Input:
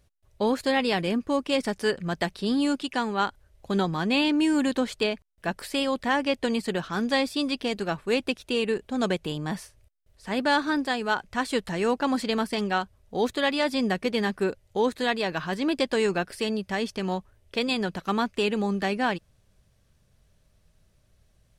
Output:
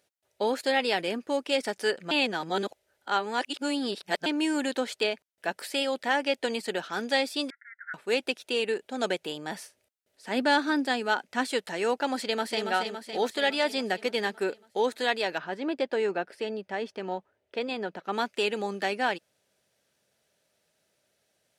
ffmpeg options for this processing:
-filter_complex "[0:a]asettb=1/sr,asplit=3[a][b][c];[a]atrim=end=7.504[d];[b]atrim=start=7.5:end=7.94,asetpts=PTS-STARTPTS,afade=t=in:d=0.004:c=qsin,afade=t=out:st=0.436:d=0.004:c=qsin,asuperpass=centerf=1700:order=20:qfactor=2.2[e];[c]atrim=start=7.936[f];[d][e]acrossfade=d=0.004:c1=hsin:c2=qsin[g];[g][f]acrossfade=d=0.004:c1=qsin:c2=hsin,asettb=1/sr,asplit=3[h][i][j];[h]atrim=end=9.594[k];[i]atrim=start=9.59:end=11.47,asetpts=PTS-STARTPTS,afade=t=in:d=0.004:c=qsin,afade=t=out:st=1.876:d=0.004:c=qsin,equalizer=f=250:t=o:w=0.65:g=8[l];[j]atrim=start=11.466[m];[k][l]acrossfade=d=0.004:c1=hsin:c2=qsin[n];[n][m]acrossfade=d=0.004:c1=qsin:c2=hsin,asplit=2[o][p];[p]afade=t=in:st=12.16:d=0.01,afade=t=out:st=12.67:d=0.01,aecho=0:1:280|560|840|1120|1400|1680|1960|2240|2520|2800:0.501187|0.325772|0.211752|0.137639|0.0894651|0.0581523|0.037799|0.0245693|0.0159701|0.0103805[q];[o][q]amix=inputs=2:normalize=0,asplit=3[r][s][t];[r]afade=t=out:st=15.37:d=0.02[u];[s]lowpass=f=1.3k:p=1,afade=t=in:st=15.37:d=0.02,afade=t=out:st=18.12:d=0.02[v];[t]afade=t=in:st=18.12:d=0.02[w];[u][v][w]amix=inputs=3:normalize=0,asplit=3[x][y][z];[x]atrim=end=2.112[aa];[y]atrim=start=2.108:end=4.262,asetpts=PTS-STARTPTS,areverse[ab];[z]atrim=start=4.258[ac];[aa][ab]acrossfade=d=0.004:c1=hsin:c2=hsin[ad];[ad][ac]acrossfade=d=0.004:c1=hsin:c2=hsin,highpass=380,bandreject=f=1.1k:w=5.6"

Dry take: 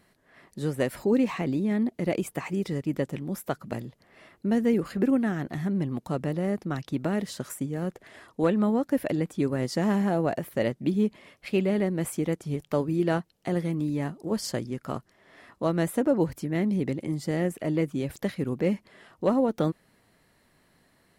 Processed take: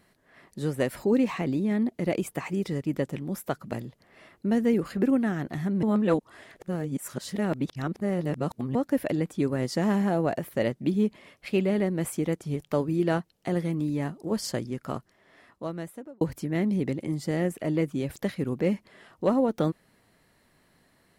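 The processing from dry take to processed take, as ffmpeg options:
-filter_complex "[0:a]asplit=4[a][b][c][d];[a]atrim=end=5.832[e];[b]atrim=start=5.828:end=8.752,asetpts=PTS-STARTPTS,areverse[f];[c]atrim=start=8.748:end=16.21,asetpts=PTS-STARTPTS,afade=t=out:st=6.152:d=1.31[g];[d]atrim=start=16.21,asetpts=PTS-STARTPTS,afade=t=in:d=0.004:c=hsin[h];[e][f]acrossfade=d=0.004:c1=hsin:c2=hsin[i];[g][h]concat=n=2:v=0:a=1[j];[i][j]acrossfade=d=0.004:c1=hsin:c2=hsin"

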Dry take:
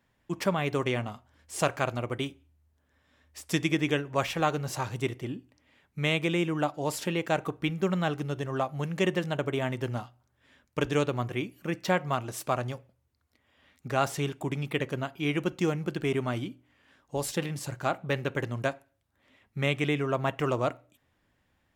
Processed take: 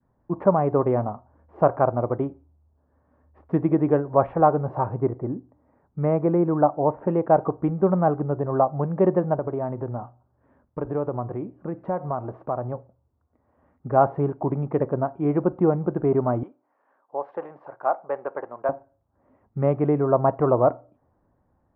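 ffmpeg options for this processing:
-filter_complex "[0:a]asettb=1/sr,asplit=3[a][b][c];[a]atrim=end=4.974[d];[b]atrim=start=4.97:end=7.08,asetpts=PTS-STARTPTS,afade=t=in:d=0.004:c=qsin,afade=t=out:st=2.106:d=0.004:c=qsin,lowpass=f=2.3k:w=0.5412,lowpass=f=2.3k:w=1.3066[e];[c]atrim=start=7.076[f];[d][e]acrossfade=d=0.004:c1=hsin:c2=qsin[g];[g][f]acrossfade=d=0.004:c1=qsin:c2=hsin,asettb=1/sr,asplit=3[h][i][j];[h]atrim=end=9.344[k];[i]atrim=start=9.34:end=12.72,asetpts=PTS-STARTPTS,afade=t=in:d=0.004:c=qsin,afade=t=out:st=3.376:d=0.004:c=qsin,acompressor=threshold=-35dB:ratio=2:attack=3.2:release=140:knee=1:detection=peak[l];[j]atrim=start=12.716[m];[k][l]acrossfade=d=0.004:c1=hsin:c2=qsin[n];[n][m]acrossfade=d=0.004:c1=qsin:c2=hsin,asettb=1/sr,asplit=3[o][p][q];[o]atrim=end=16.434[r];[p]atrim=start=16.43:end=18.69,asetpts=PTS-STARTPTS,afade=t=in:d=0.004:c=qsin,afade=t=out:st=2.256:d=0.004:c=qsin,highpass=670,lowpass=7.8k[s];[q]atrim=start=18.686[t];[r][s]acrossfade=d=0.004:c1=hsin:c2=qsin[u];[u][t]acrossfade=d=0.004:c1=qsin:c2=hsin,lowpass=f=1.1k:w=0.5412,lowpass=f=1.1k:w=1.3066,adynamicequalizer=threshold=0.00794:dfrequency=700:dqfactor=0.87:tfrequency=700:tqfactor=0.87:attack=5:release=100:ratio=0.375:range=3:mode=boostabove:tftype=bell,volume=5.5dB"

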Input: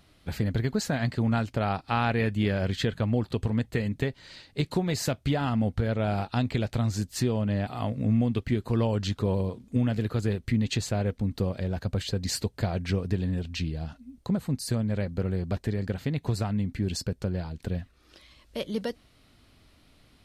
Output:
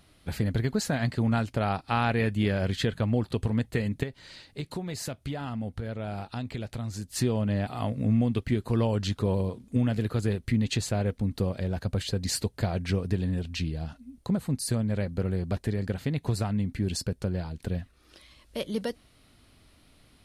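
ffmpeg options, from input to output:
-filter_complex "[0:a]asettb=1/sr,asplit=3[a][b][c];[a]atrim=end=4.034[d];[b]atrim=start=4.03:end=7.1,asetpts=PTS-STARTPTS,afade=t=in:d=0.004:c=qsin,afade=t=out:st=3.066:d=0.004:c=qsin,acompressor=threshold=-43dB:ratio=1.5:attack=3.2:release=140:knee=1:detection=peak[e];[c]atrim=start=7.096[f];[d][e]acrossfade=d=0.004:c1=hsin:c2=qsin[g];[g][f]acrossfade=d=0.004:c1=qsin:c2=hsin,equalizer=f=10k:t=o:w=0.32:g=7.5"

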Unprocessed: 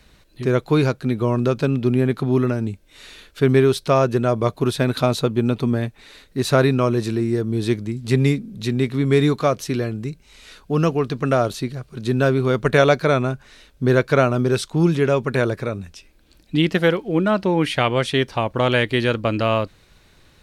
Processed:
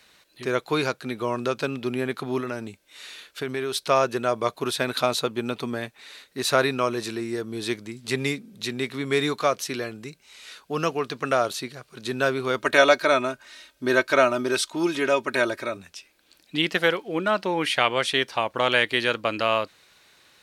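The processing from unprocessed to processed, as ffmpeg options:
-filter_complex "[0:a]asettb=1/sr,asplit=3[a][b][c];[a]atrim=end=2.404[d];[b]atrim=start=2.4:end=3.88,asetpts=PTS-STARTPTS,afade=t=in:d=0.004:c=qsin,afade=t=out:st=1.476:d=0.004:c=qsin,acompressor=threshold=-17dB:ratio=6:attack=3.2:release=140:knee=1:detection=peak[e];[c]atrim=start=3.876[f];[d][e]acrossfade=d=0.004:c1=hsin:c2=qsin[g];[g][f]acrossfade=d=0.004:c1=qsin:c2=hsin,asettb=1/sr,asplit=3[h][i][j];[h]atrim=end=12.574[k];[i]atrim=start=12.57:end=15.77,asetpts=PTS-STARTPTS,afade=t=in:d=0.004:c=qsin,afade=t=out:st=3.196:d=0.004:c=qsin,aecho=1:1:3.2:0.65,atrim=end_sample=141120[l];[j]atrim=start=15.766[m];[k][l]acrossfade=d=0.004:c1=hsin:c2=qsin[n];[n][m]acrossfade=d=0.004:c1=qsin:c2=hsin,highpass=f=930:p=1,volume=1.5dB"

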